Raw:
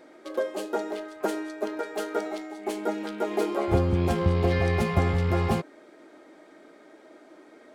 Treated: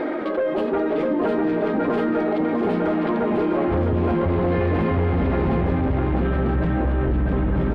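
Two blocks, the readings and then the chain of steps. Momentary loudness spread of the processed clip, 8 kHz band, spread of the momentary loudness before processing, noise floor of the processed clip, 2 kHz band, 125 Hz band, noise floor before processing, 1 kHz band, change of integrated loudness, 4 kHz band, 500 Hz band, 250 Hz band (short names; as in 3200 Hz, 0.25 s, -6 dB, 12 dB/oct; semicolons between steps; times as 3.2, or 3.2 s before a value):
1 LU, under -15 dB, 10 LU, -24 dBFS, +4.5 dB, +5.0 dB, -53 dBFS, +6.0 dB, +6.0 dB, -1.5 dB, +7.0 dB, +10.0 dB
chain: echoes that change speed 0.217 s, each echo -5 st, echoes 2; reverse; upward compressor, threshold -26 dBFS; reverse; flange 1 Hz, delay 2.3 ms, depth 3.9 ms, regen -57%; soft clip -27 dBFS, distortion -11 dB; air absorption 460 m; echo 0.653 s -4.5 dB; fast leveller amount 70%; gain +8 dB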